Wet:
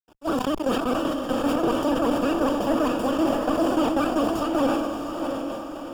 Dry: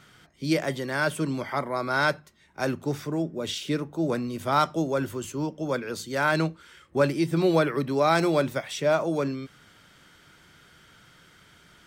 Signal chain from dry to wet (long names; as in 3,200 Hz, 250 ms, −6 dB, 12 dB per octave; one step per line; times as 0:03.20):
spectral envelope flattened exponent 0.3
speech leveller 0.5 s
gate pattern "..xx...xxx" 193 BPM −24 dB
fuzz pedal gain 43 dB, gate −51 dBFS
moving average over 43 samples
pitch vibrato 12 Hz 66 cents
feedback delay with all-pass diffusion 1,392 ms, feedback 51%, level −4.5 dB
wrong playback speed 7.5 ips tape played at 15 ips
level that may fall only so fast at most 34 dB per second
level −3 dB